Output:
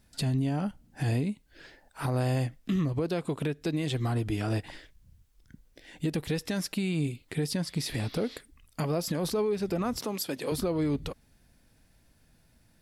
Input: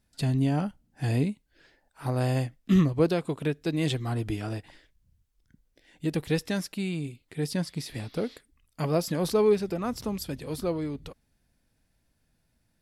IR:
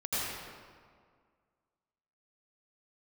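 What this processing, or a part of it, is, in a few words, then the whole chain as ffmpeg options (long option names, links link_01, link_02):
stacked limiters: -filter_complex "[0:a]asettb=1/sr,asplit=3[link_01][link_02][link_03];[link_01]atrim=end=9.994[link_04];[link_02]atrim=start=9.99:end=10.52,asetpts=PTS-STARTPTS,afade=type=in:duration=0.004:curve=qsin,afade=type=out:start_time=0.526:duration=0.004:curve=qsin,highpass=300[link_05];[link_03]atrim=start=10.516[link_06];[link_04][link_05]acrossfade=duration=0.004:curve1=hsin:curve2=qsin[link_07];[link_07][link_06]acrossfade=duration=0.004:curve1=qsin:curve2=hsin,alimiter=limit=-17.5dB:level=0:latency=1:release=329,alimiter=limit=-23dB:level=0:latency=1:release=257,alimiter=level_in=5.5dB:limit=-24dB:level=0:latency=1:release=178,volume=-5.5dB,volume=8.5dB"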